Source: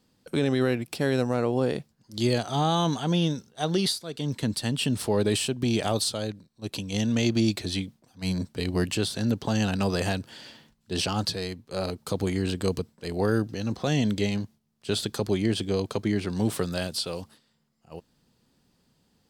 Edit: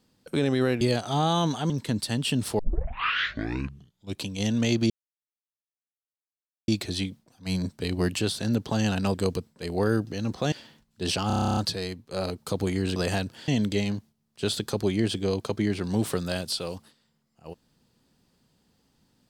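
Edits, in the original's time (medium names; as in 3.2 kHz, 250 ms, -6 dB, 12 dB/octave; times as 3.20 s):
0.81–2.23 s: delete
3.12–4.24 s: delete
5.13 s: tape start 1.65 s
7.44 s: insert silence 1.78 s
9.90–10.42 s: swap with 12.56–13.94 s
11.17 s: stutter 0.03 s, 11 plays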